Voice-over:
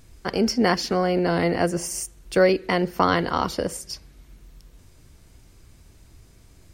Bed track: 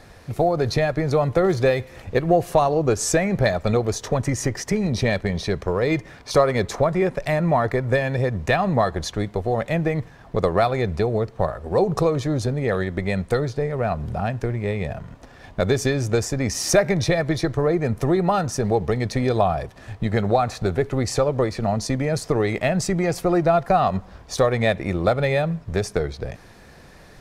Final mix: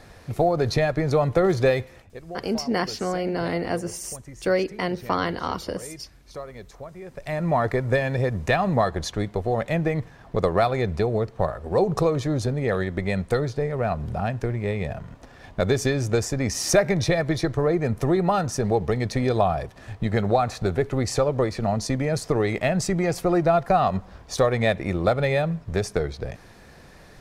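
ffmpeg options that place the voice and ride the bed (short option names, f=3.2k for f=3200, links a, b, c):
-filter_complex "[0:a]adelay=2100,volume=-4.5dB[a];[1:a]volume=17dB,afade=t=out:st=1.8:d=0.29:silence=0.11885,afade=t=in:st=7.05:d=0.57:silence=0.125893[b];[a][b]amix=inputs=2:normalize=0"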